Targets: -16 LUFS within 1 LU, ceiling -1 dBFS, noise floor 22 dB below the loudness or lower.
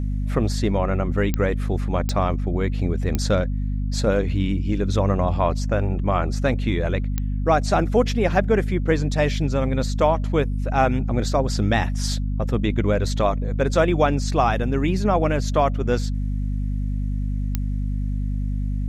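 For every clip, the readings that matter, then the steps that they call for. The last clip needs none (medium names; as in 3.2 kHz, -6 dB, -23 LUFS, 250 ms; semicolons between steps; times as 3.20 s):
clicks found 5; hum 50 Hz; highest harmonic 250 Hz; hum level -21 dBFS; loudness -22.5 LUFS; peak level -5.0 dBFS; loudness target -16.0 LUFS
-> de-click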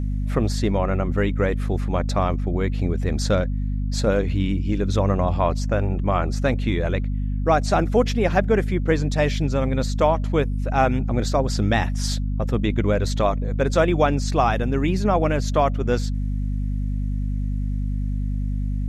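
clicks found 0; hum 50 Hz; highest harmonic 250 Hz; hum level -21 dBFS
-> hum notches 50/100/150/200/250 Hz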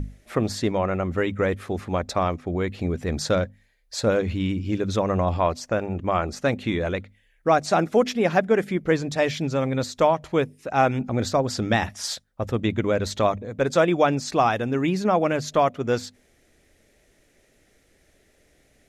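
hum not found; loudness -24.0 LUFS; peak level -6.0 dBFS; loudness target -16.0 LUFS
-> trim +8 dB; peak limiter -1 dBFS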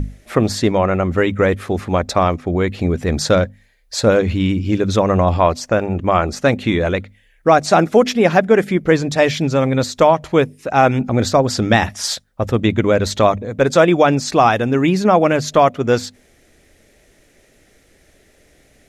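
loudness -16.5 LUFS; peak level -1.0 dBFS; noise floor -54 dBFS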